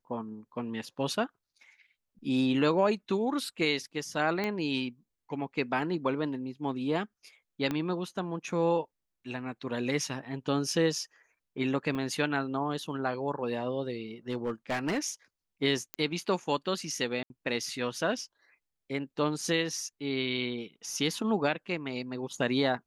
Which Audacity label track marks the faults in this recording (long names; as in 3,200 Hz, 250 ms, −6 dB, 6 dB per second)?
4.440000	4.440000	click −18 dBFS
7.710000	7.710000	click −18 dBFS
11.950000	11.950000	drop-out 2.4 ms
14.300000	14.990000	clipping −25.5 dBFS
15.940000	15.940000	click −17 dBFS
17.230000	17.300000	drop-out 71 ms